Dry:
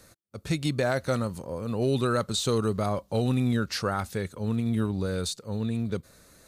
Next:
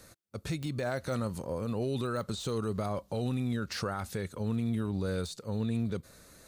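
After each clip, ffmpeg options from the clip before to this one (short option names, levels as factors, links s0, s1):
-af "deesser=0.8,alimiter=level_in=1.06:limit=0.0631:level=0:latency=1:release=101,volume=0.944"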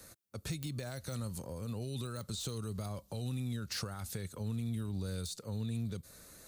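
-filter_complex "[0:a]highshelf=f=7700:g=8,acrossover=split=170|3000[s0][s1][s2];[s1]acompressor=threshold=0.00794:ratio=5[s3];[s0][s3][s2]amix=inputs=3:normalize=0,volume=0.794"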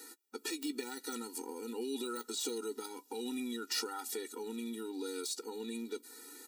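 -filter_complex "[0:a]asplit=2[s0][s1];[s1]adelay=14,volume=0.224[s2];[s0][s2]amix=inputs=2:normalize=0,afftfilt=real='re*eq(mod(floor(b*sr/1024/250),2),1)':imag='im*eq(mod(floor(b*sr/1024/250),2),1)':win_size=1024:overlap=0.75,volume=2.37"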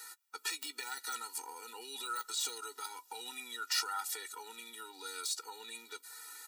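-af "highpass=f=1100:t=q:w=1.5,volume=1.33"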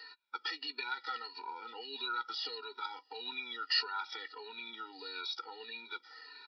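-af "afftfilt=real='re*pow(10,14/40*sin(2*PI*(1.5*log(max(b,1)*sr/1024/100)/log(2)-(-1.6)*(pts-256)/sr)))':imag='im*pow(10,14/40*sin(2*PI*(1.5*log(max(b,1)*sr/1024/100)/log(2)-(-1.6)*(pts-256)/sr)))':win_size=1024:overlap=0.75,aresample=11025,aresample=44100"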